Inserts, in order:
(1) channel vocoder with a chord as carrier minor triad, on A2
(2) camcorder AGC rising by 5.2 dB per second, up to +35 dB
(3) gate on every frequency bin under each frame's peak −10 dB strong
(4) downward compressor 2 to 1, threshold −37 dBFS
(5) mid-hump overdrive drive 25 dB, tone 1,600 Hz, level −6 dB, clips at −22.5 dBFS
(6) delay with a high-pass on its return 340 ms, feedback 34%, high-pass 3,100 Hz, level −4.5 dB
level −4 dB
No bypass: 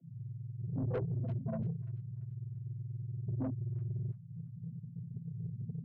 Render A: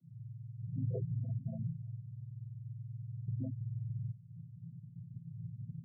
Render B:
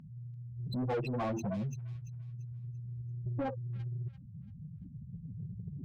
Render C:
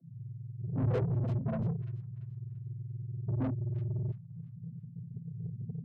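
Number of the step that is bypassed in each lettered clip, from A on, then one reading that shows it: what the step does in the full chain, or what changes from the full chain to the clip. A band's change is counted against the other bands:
5, change in crest factor +2.5 dB
1, 1 kHz band +11.0 dB
4, average gain reduction 3.0 dB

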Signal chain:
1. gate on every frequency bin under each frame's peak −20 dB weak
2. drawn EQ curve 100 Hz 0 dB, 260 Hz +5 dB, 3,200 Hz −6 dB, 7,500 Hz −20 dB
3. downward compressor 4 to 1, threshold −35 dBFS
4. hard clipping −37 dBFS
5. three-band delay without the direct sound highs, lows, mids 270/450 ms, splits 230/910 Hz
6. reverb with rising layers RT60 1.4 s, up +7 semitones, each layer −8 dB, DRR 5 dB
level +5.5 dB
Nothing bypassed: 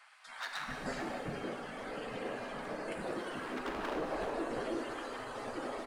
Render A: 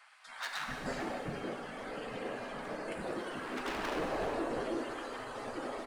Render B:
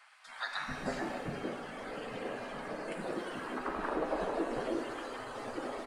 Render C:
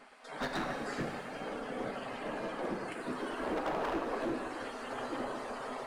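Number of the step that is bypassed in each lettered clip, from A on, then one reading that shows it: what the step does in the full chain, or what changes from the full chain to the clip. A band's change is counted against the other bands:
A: 3, change in momentary loudness spread +2 LU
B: 4, distortion level −11 dB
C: 5, change in crest factor −2.5 dB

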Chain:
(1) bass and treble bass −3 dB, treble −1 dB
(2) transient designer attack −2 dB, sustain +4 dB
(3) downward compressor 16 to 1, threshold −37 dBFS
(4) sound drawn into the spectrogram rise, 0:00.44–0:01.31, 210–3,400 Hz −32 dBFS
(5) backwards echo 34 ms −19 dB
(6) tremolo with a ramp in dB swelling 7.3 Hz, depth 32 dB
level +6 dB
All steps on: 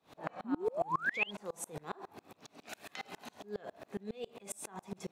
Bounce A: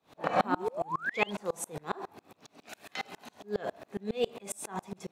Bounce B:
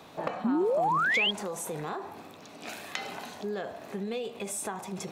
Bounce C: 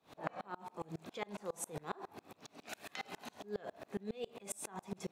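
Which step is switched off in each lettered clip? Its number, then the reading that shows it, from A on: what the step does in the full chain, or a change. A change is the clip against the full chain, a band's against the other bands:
3, average gain reduction 6.0 dB
6, change in crest factor −4.5 dB
4, 2 kHz band −8.0 dB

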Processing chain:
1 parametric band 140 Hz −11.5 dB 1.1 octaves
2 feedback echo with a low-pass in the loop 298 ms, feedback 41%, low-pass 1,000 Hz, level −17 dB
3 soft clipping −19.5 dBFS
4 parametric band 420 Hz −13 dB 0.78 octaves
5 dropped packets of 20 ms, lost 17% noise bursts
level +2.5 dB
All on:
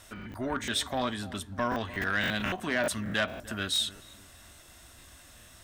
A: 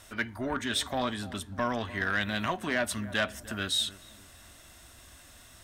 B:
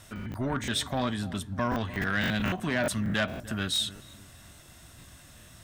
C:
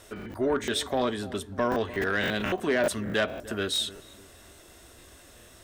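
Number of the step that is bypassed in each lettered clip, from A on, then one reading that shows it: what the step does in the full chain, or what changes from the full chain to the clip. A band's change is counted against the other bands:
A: 5, change in momentary loudness spread −1 LU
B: 1, 125 Hz band +7.0 dB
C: 4, 500 Hz band +7.0 dB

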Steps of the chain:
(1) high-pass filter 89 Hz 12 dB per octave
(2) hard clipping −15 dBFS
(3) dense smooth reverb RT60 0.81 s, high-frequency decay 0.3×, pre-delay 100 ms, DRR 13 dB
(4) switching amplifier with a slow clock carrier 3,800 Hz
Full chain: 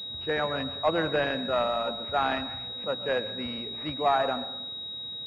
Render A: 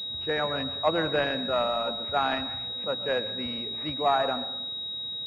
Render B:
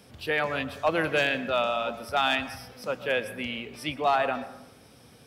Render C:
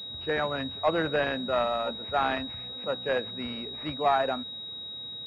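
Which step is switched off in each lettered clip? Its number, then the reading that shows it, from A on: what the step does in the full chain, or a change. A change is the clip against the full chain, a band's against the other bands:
2, distortion level −25 dB
4, 2 kHz band +5.0 dB
3, 4 kHz band −1.5 dB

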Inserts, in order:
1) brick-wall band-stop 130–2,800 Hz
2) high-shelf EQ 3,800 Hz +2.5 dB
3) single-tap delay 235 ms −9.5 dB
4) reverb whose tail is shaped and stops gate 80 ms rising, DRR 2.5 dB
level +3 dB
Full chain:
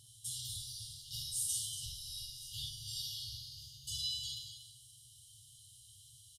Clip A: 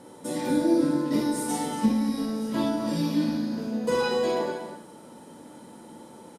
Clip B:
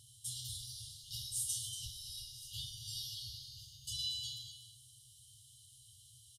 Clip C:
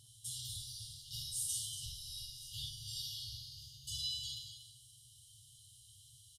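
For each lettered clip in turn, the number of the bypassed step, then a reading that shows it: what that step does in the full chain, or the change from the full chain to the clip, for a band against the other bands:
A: 1, 2 kHz band +33.5 dB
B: 4, echo-to-direct ratio −1.5 dB to −9.5 dB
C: 2, change in integrated loudness −1.5 LU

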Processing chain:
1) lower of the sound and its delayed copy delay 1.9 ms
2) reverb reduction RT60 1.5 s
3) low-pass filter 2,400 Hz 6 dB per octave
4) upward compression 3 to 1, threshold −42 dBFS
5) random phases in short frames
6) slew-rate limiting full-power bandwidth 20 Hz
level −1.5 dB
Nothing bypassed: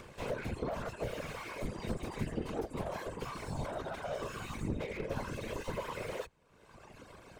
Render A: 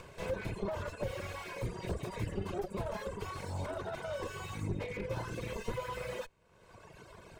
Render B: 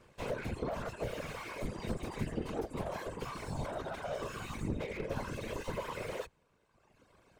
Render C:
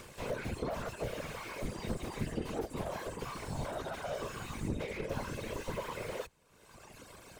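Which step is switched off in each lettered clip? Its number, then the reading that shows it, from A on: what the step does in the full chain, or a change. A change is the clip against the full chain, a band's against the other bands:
5, 125 Hz band +2.0 dB
4, change in momentary loudness spread −1 LU
3, 8 kHz band +3.5 dB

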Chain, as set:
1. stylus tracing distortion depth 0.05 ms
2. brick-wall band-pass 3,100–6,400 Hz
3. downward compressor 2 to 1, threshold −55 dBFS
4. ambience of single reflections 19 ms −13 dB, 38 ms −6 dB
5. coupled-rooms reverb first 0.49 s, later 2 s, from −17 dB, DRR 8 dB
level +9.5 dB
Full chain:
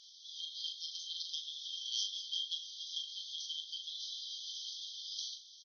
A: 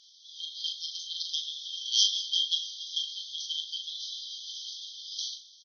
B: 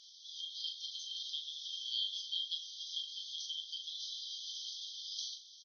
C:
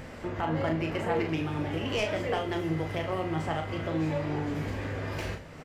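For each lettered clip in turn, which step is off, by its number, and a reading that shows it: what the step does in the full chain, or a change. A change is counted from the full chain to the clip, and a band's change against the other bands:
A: 3, average gain reduction 5.5 dB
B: 1, change in crest factor −2.0 dB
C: 2, change in crest factor −7.5 dB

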